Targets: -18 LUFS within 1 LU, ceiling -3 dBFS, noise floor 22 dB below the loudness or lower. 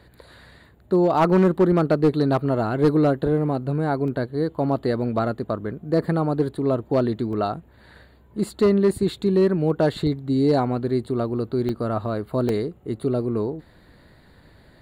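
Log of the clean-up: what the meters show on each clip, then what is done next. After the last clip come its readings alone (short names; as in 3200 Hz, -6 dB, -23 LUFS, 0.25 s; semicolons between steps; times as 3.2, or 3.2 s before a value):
clipped 0.6%; flat tops at -11.5 dBFS; dropouts 4; longest dropout 1.3 ms; loudness -22.5 LUFS; peak -11.5 dBFS; loudness target -18.0 LUFS
-> clip repair -11.5 dBFS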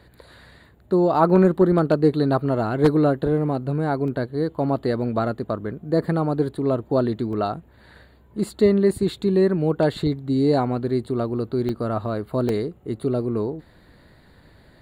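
clipped 0.0%; dropouts 4; longest dropout 1.3 ms
-> interpolate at 4.08/7.33/11.69/12.49, 1.3 ms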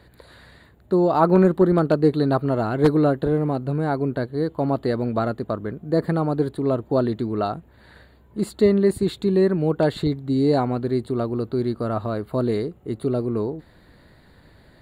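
dropouts 0; loudness -22.0 LUFS; peak -2.5 dBFS; loudness target -18.0 LUFS
-> gain +4 dB; limiter -3 dBFS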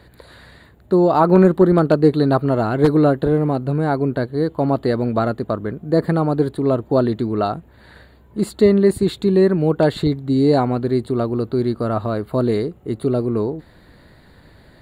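loudness -18.0 LUFS; peak -3.0 dBFS; noise floor -49 dBFS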